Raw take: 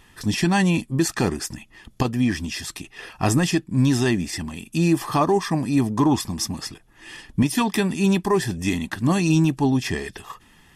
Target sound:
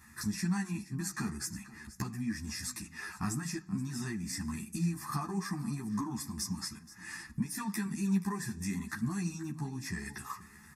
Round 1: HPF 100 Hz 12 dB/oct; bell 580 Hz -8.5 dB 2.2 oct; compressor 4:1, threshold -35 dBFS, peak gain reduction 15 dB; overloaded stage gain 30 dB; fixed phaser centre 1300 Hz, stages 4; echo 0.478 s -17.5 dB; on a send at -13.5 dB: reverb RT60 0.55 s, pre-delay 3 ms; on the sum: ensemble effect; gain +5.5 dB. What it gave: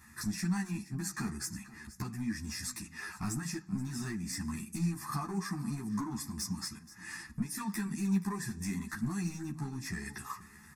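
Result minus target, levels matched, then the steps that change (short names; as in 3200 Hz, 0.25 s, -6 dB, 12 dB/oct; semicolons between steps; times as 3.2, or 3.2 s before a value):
overloaded stage: distortion +29 dB
change: overloaded stage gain 19 dB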